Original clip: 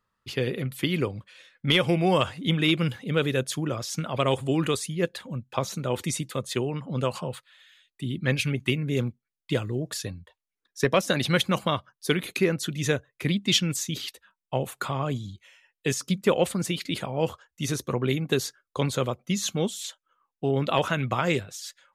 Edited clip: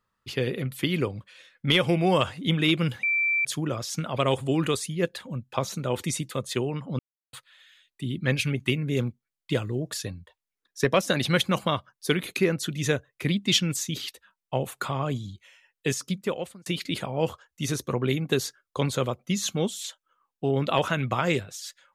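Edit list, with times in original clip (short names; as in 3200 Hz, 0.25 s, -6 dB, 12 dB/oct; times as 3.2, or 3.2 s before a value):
3.03–3.45 bleep 2340 Hz -21 dBFS
6.99–7.33 mute
15.87–16.66 fade out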